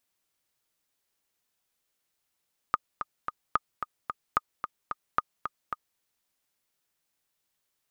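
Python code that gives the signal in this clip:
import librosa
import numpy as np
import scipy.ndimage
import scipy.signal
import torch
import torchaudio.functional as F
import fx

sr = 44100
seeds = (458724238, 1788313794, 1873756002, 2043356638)

y = fx.click_track(sr, bpm=221, beats=3, bars=4, hz=1230.0, accent_db=8.5, level_db=-9.5)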